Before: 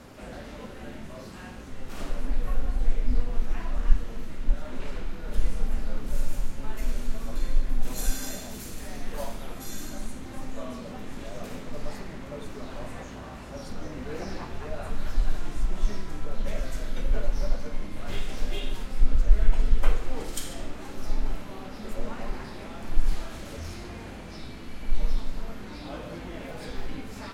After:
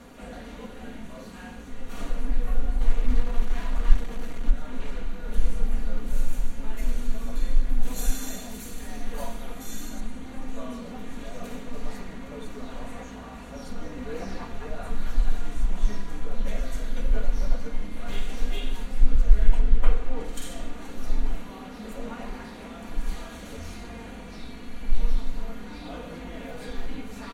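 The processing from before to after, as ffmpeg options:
-filter_complex "[0:a]asettb=1/sr,asplit=3[s0][s1][s2];[s0]atrim=end=2.814[s3];[s1]atrim=start=2.81:end=4.5,asetpts=PTS-STARTPTS,afade=t=in:d=0.004:c=qsin,afade=t=out:st=1.686:d=0.004:c=qsin,acrusher=bits=5:mix=0:aa=0.5[s4];[s2]atrim=start=4.496[s5];[s3][s4]acrossfade=d=0.004:c1=hsin:c2=qsin[s6];[s6][s5]acrossfade=d=0.004:c1=qsin:c2=hsin,asettb=1/sr,asplit=3[s7][s8][s9];[s7]atrim=end=10.004[s10];[s8]atrim=start=10:end=10.48,asetpts=PTS-STARTPTS,afade=t=in:d=0.004:c=qsin,afade=t=out:st=0.476:d=0.004:c=qsin,acrossover=split=4600[s11][s12];[s12]acompressor=threshold=0.00126:ratio=4:attack=1:release=60[s13];[s11][s13]amix=inputs=2:normalize=0[s14];[s9]atrim=start=10.476[s15];[s10][s14]acrossfade=d=0.004:c1=hsin:c2=qsin[s16];[s16][s15]acrossfade=d=0.004:c1=qsin:c2=hsin,asettb=1/sr,asplit=3[s17][s18][s19];[s17]atrim=end=19.594[s20];[s18]atrim=start=19.59:end=20.42,asetpts=PTS-STARTPTS,afade=t=in:d=0.004:c=qsin,afade=t=out:st=0.826:d=0.004:c=qsin,highshelf=f=4100:g=-9.5[s21];[s19]atrim=start=20.416[s22];[s20][s21]acrossfade=d=0.004:c1=hsin:c2=qsin[s23];[s23][s22]acrossfade=d=0.004:c1=qsin:c2=hsin,asettb=1/sr,asplit=3[s24][s25][s26];[s24]atrim=end=21.494[s27];[s25]atrim=start=21.49:end=23.48,asetpts=PTS-STARTPTS,afade=t=in:d=0.004:c=qsin,afade=t=out:st=1.986:d=0.004:c=qsin,highpass=f=49:p=1[s28];[s26]atrim=start=23.476[s29];[s27][s28]acrossfade=d=0.004:c1=hsin:c2=qsin[s30];[s30][s29]acrossfade=d=0.004:c1=qsin:c2=hsin,bandreject=f=5100:w=7.4,aecho=1:1:4.2:0.54,volume=0.891"

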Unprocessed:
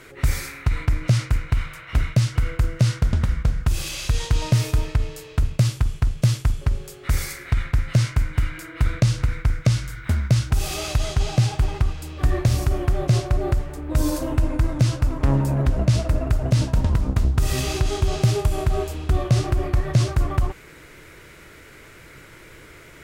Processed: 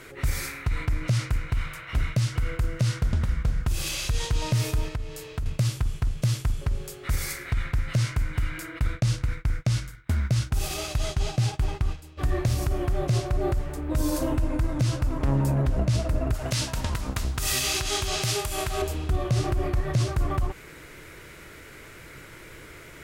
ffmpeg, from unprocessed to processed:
-filter_complex "[0:a]asettb=1/sr,asplit=3[s0][s1][s2];[s0]atrim=end=4.884[s3];[s1]atrim=start=4.88:end=5.46,asetpts=PTS-STARTPTS,afade=t=in:d=0.004:c=qsin,afade=t=out:st=0.576:d=0.004:c=qsin,acompressor=threshold=0.02:ratio=2:attack=3.2:release=140:knee=1:detection=peak[s4];[s2]atrim=start=5.456[s5];[s3][s4]acrossfade=d=0.004:c1=hsin:c2=qsin[s6];[s6][s5]acrossfade=d=0.004:c1=qsin:c2=hsin,asplit=3[s7][s8][s9];[s7]afade=t=out:st=8.78:d=0.02[s10];[s8]agate=range=0.0224:threshold=0.0562:ratio=3:release=100:detection=peak,afade=t=in:st=8.78:d=0.02,afade=t=out:st=12.17:d=0.02[s11];[s9]afade=t=in:st=12.17:d=0.02[s12];[s10][s11][s12]amix=inputs=3:normalize=0,asettb=1/sr,asplit=3[s13][s14][s15];[s13]atrim=end=16.344[s16];[s14]atrim=start=16.34:end=18.82,asetpts=PTS-STARTPTS,afade=t=in:d=0.004:c=qsin,afade=t=out:st=2.476:d=0.004:c=qsin,tiltshelf=f=830:g=-8[s17];[s15]atrim=start=18.816[s18];[s16][s17]acrossfade=d=0.004:c1=hsin:c2=qsin[s19];[s19][s18]acrossfade=d=0.004:c1=qsin:c2=hsin,equalizer=f=12000:t=o:w=0.77:g=2,alimiter=limit=0.178:level=0:latency=1:release=145"

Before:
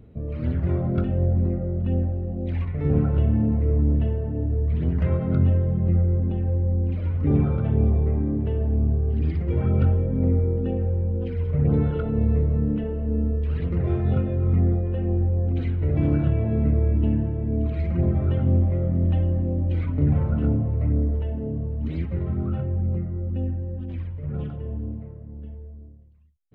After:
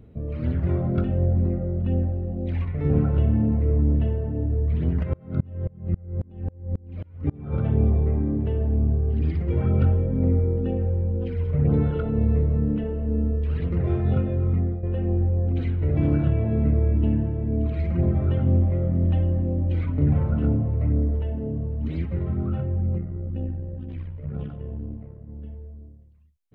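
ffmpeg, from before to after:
-filter_complex "[0:a]asplit=3[s0][s1][s2];[s0]afade=t=out:st=5.02:d=0.02[s3];[s1]aeval=exprs='val(0)*pow(10,-31*if(lt(mod(-3.7*n/s,1),2*abs(-3.7)/1000),1-mod(-3.7*n/s,1)/(2*abs(-3.7)/1000),(mod(-3.7*n/s,1)-2*abs(-3.7)/1000)/(1-2*abs(-3.7)/1000))/20)':c=same,afade=t=in:st=5.02:d=0.02,afade=t=out:st=7.52:d=0.02[s4];[s2]afade=t=in:st=7.52:d=0.02[s5];[s3][s4][s5]amix=inputs=3:normalize=0,asettb=1/sr,asplit=3[s6][s7][s8];[s6]atrim=end=22.984[s9];[s7]atrim=start=22.98:end=25.28,asetpts=PTS-STARTPTS,afade=t=in:d=0.004:c=qsin,afade=t=out:st=2.296:d=0.004:c=qsin,tremolo=f=65:d=0.571[s10];[s8]atrim=start=25.276[s11];[s9][s10]acrossfade=d=0.004:c1=hsin:c2=qsin[s12];[s12][s11]acrossfade=d=0.004:c1=qsin:c2=hsin,asplit=2[s13][s14];[s13]atrim=end=14.83,asetpts=PTS-STARTPTS,afade=t=out:st=14.39:d=0.44:silence=0.334965[s15];[s14]atrim=start=14.83,asetpts=PTS-STARTPTS,afade=t=in:d=0.004:c=hsin:silence=0.334965[s16];[s15][s16]concat=n=2:v=0:a=1"

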